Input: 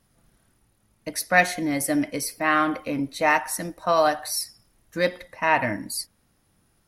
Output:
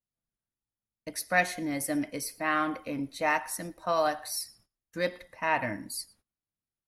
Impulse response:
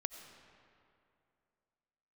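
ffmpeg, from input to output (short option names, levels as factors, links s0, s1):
-filter_complex "[0:a]agate=range=0.0562:threshold=0.00224:ratio=16:detection=peak[s0];[1:a]atrim=start_sample=2205,atrim=end_sample=3087,asetrate=25578,aresample=44100[s1];[s0][s1]afir=irnorm=-1:irlink=0,volume=0.398"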